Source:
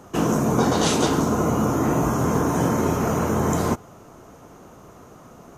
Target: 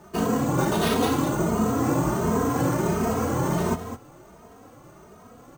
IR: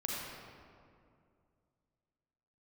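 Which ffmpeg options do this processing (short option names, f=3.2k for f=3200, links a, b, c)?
-filter_complex "[0:a]acrusher=samples=6:mix=1:aa=0.000001,aecho=1:1:208:0.299,asplit=2[a][b];[b]adelay=2.9,afreqshift=1.4[c];[a][c]amix=inputs=2:normalize=1"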